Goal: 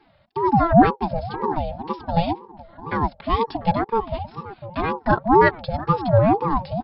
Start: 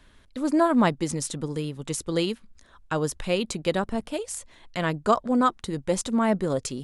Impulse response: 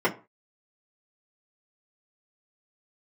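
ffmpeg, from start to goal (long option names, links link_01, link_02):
-filter_complex "[0:a]asettb=1/sr,asplit=3[link_01][link_02][link_03];[link_01]atrim=end=5.324[link_04];[link_02]atrim=start=5.32:end=5.89,asetpts=PTS-STARTPTS,afade=type=in:duration=0.004:curve=qsin,afade=type=out:start_time=0.566:duration=0.004:curve=qsin,aemphasis=mode=production:type=75kf[link_05];[link_03]atrim=start=5.886[link_06];[link_04][link_05]acrossfade=duration=0.004:curve1=hsin:curve2=qsin[link_07];[link_07][link_06]acrossfade=duration=0.004:curve1=qsin:curve2=hsin,asplit=2[link_08][link_09];[link_09]adelay=696,lowpass=frequency=1100:poles=1,volume=-14dB,asplit=2[link_10][link_11];[link_11]adelay=696,lowpass=frequency=1100:poles=1,volume=0.41,asplit=2[link_12][link_13];[link_13]adelay=696,lowpass=frequency=1100:poles=1,volume=0.41,asplit=2[link_14][link_15];[link_15]adelay=696,lowpass=frequency=1100:poles=1,volume=0.41[link_16];[link_08][link_10][link_12][link_14][link_16]amix=inputs=5:normalize=0,afftfilt=real='re*between(b*sr/4096,140,4900)':imag='im*between(b*sr/4096,140,4900)':win_size=4096:overlap=0.75,tiltshelf=frequency=860:gain=5.5,aecho=1:1:4:0.97,aeval=exprs='val(0)*sin(2*PI*510*n/s+510*0.35/2*sin(2*PI*2*n/s))':channel_layout=same,volume=1dB"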